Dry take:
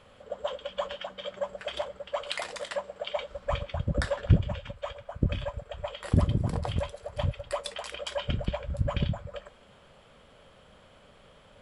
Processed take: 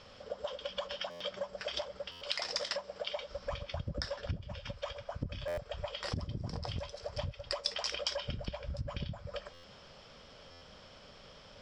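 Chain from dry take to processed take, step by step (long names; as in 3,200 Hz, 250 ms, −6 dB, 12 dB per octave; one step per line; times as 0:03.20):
downward compressor 8 to 1, threshold −35 dBFS, peak gain reduction 20.5 dB
low-pass with resonance 5,300 Hz, resonance Q 9.1
buffer that repeats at 0:01.10/0:02.11/0:05.47/0:09.53/0:10.51, samples 512, times 8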